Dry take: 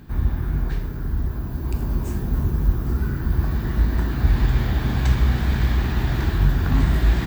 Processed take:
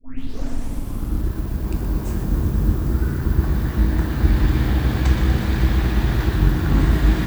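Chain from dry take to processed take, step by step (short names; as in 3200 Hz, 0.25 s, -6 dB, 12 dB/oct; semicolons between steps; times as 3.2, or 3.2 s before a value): tape start at the beginning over 1.30 s; AM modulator 260 Hz, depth 35%; lo-fi delay 0.121 s, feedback 80%, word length 7-bit, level -9.5 dB; gain +3 dB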